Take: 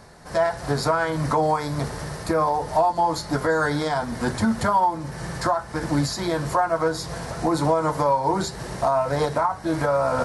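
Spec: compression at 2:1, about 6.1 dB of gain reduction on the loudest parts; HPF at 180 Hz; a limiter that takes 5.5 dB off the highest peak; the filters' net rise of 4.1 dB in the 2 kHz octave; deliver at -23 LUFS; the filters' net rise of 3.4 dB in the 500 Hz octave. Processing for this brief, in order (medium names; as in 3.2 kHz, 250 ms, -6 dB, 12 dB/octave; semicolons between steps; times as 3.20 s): high-pass 180 Hz; peaking EQ 500 Hz +4 dB; peaking EQ 2 kHz +5.5 dB; compression 2:1, threshold -25 dBFS; trim +4.5 dB; peak limiter -13 dBFS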